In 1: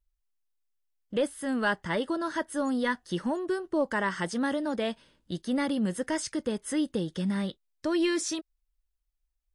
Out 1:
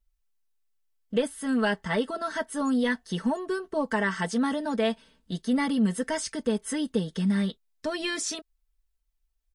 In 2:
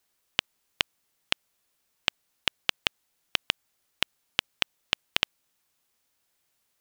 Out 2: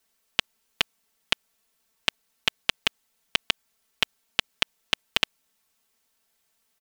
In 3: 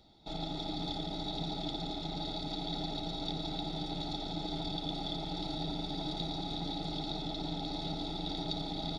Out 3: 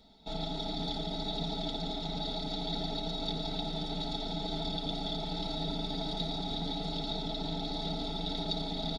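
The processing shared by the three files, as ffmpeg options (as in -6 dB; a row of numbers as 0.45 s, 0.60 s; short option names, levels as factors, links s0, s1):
-af "aecho=1:1:4.5:0.83"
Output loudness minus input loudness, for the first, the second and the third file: +2.0 LU, +2.5 LU, +2.0 LU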